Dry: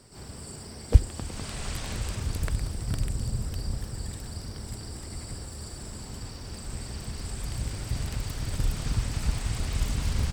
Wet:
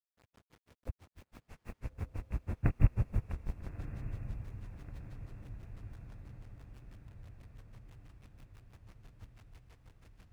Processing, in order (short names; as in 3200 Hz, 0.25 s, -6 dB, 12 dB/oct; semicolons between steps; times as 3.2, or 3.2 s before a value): Doppler pass-by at 2.8, 31 m/s, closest 3.8 m; in parallel at -5 dB: Schmitt trigger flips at -44 dBFS; on the sum: brick-wall FIR low-pass 2800 Hz; bit-crush 11-bit; grains 0.1 s, grains 6.1/s; on a send: diffused feedback echo 1.281 s, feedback 61%, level -11 dB; on the sum: gain +7.5 dB